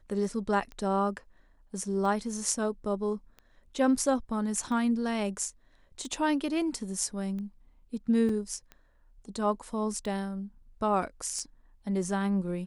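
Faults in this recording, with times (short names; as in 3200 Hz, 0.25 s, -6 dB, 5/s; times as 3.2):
tick 45 rpm -30 dBFS
8.29 gap 3.4 ms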